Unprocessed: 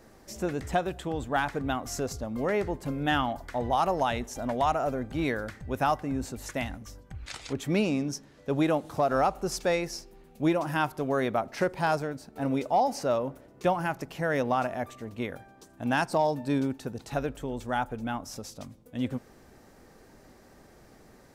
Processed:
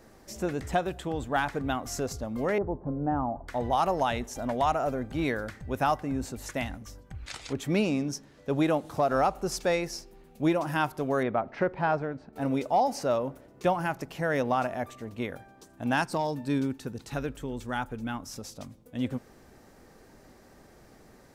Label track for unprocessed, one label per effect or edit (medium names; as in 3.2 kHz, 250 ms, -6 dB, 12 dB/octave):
2.580000	3.480000	low-pass 1 kHz 24 dB/octave
11.230000	12.330000	low-pass 2.3 kHz
16.020000	18.410000	peaking EQ 680 Hz -7 dB